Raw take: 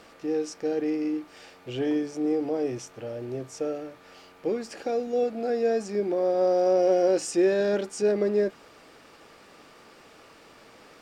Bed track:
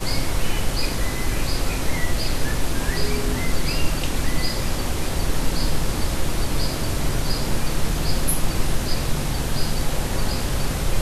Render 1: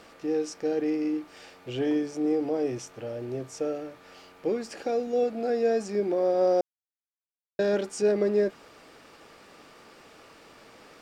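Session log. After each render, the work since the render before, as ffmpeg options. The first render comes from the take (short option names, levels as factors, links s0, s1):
-filter_complex "[0:a]asplit=3[s0][s1][s2];[s0]atrim=end=6.61,asetpts=PTS-STARTPTS,afade=t=out:st=6.606:d=0.004:c=hsin[s3];[s1]atrim=start=6.61:end=7.59,asetpts=PTS-STARTPTS,volume=0[s4];[s2]atrim=start=7.59,asetpts=PTS-STARTPTS,afade=t=in:d=0.004:c=hsin[s5];[s3][s4][s5]concat=n=3:v=0:a=1"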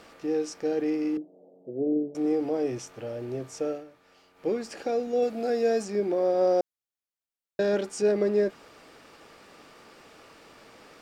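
-filter_complex "[0:a]asettb=1/sr,asplit=3[s0][s1][s2];[s0]atrim=end=1.174[s3];[s1]atrim=start=1.17:end=2.15,asetpts=PTS-STARTPTS,afade=t=in:d=0.004:c=qsin,afade=t=out:st=0.976:d=0.004:c=qsin,asuperpass=centerf=310:order=12:qfactor=0.58[s4];[s2]atrim=start=2.146[s5];[s3][s4]acrossfade=d=0.004:c1=hsin:c2=qsin[s6];[s6][s5]acrossfade=d=0.004:c1=qsin:c2=hsin,asettb=1/sr,asplit=3[s7][s8][s9];[s7]atrim=end=5.224[s10];[s8]atrim=start=5.22:end=5.85,asetpts=PTS-STARTPTS,afade=t=in:d=0.004:c=qsin,afade=t=out:st=0.626:d=0.004:c=qsin,highshelf=f=4300:g=7[s11];[s9]atrim=start=5.846[s12];[s10][s11]acrossfade=d=0.004:c1=hsin:c2=qsin[s13];[s13][s12]acrossfade=d=0.004:c1=qsin:c2=hsin,asplit=3[s14][s15][s16];[s14]atrim=end=3.85,asetpts=PTS-STARTPTS,afade=t=out:st=3.71:d=0.14:silence=0.334965[s17];[s15]atrim=start=3.85:end=4.34,asetpts=PTS-STARTPTS,volume=0.335[s18];[s16]atrim=start=4.34,asetpts=PTS-STARTPTS,afade=t=in:d=0.14:silence=0.334965[s19];[s17][s18][s19]concat=n=3:v=0:a=1"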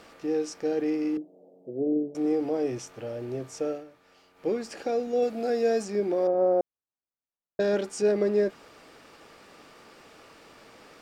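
-filter_complex "[0:a]asettb=1/sr,asplit=3[s0][s1][s2];[s0]atrim=end=6.274[s3];[s1]atrim=start=6.27:end=7.6,asetpts=PTS-STARTPTS,afade=t=in:d=0.004:c=qsin,afade=t=out:st=1.326:d=0.004:c=qsin,lowpass=1200[s4];[s2]atrim=start=7.596[s5];[s3][s4]acrossfade=d=0.004:c1=hsin:c2=qsin[s6];[s6][s5]acrossfade=d=0.004:c1=qsin:c2=hsin"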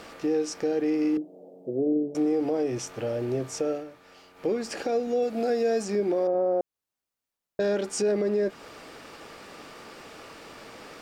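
-filter_complex "[0:a]asplit=2[s0][s1];[s1]acompressor=threshold=0.0224:ratio=6,volume=1.19[s2];[s0][s2]amix=inputs=2:normalize=0,alimiter=limit=0.126:level=0:latency=1:release=145"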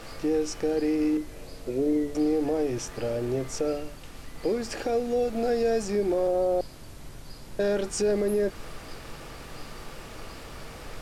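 -filter_complex "[1:a]volume=0.0891[s0];[0:a][s0]amix=inputs=2:normalize=0"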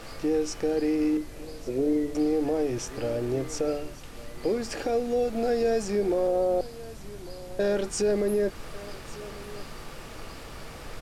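-af "aecho=1:1:1148:0.126"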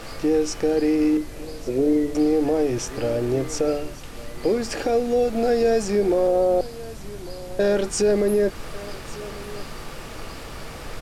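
-af "volume=1.88"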